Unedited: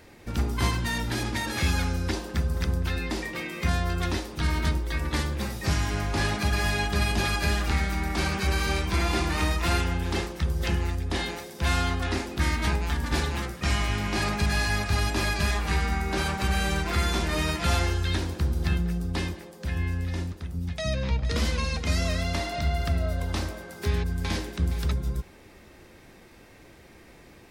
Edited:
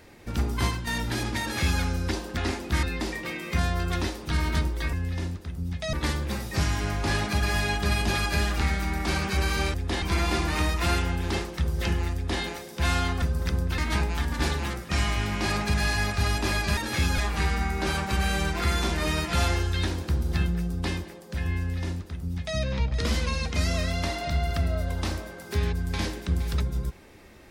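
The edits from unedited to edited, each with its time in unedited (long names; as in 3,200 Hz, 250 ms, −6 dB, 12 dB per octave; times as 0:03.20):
0:00.61–0:00.87: fade out, to −7.5 dB
0:01.41–0:01.82: duplicate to 0:15.49
0:02.37–0:02.93: swap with 0:12.04–0:12.50
0:10.96–0:11.24: duplicate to 0:08.84
0:19.89–0:20.89: duplicate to 0:05.03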